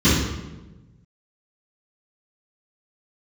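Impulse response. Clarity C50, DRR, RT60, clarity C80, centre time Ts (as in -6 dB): 0.0 dB, -16.0 dB, 1.1 s, 4.0 dB, 71 ms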